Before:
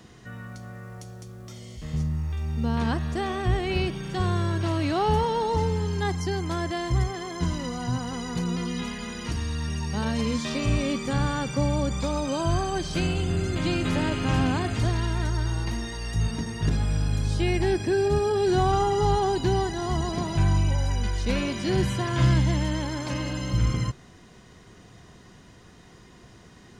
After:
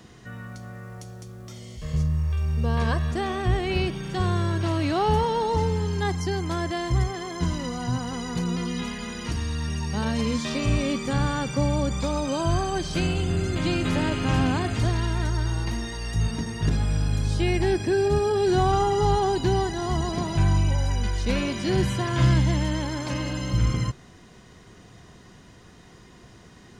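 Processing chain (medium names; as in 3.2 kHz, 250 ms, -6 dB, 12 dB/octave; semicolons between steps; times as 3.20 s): 1.81–3.11 s: comb 1.8 ms, depth 65%; trim +1 dB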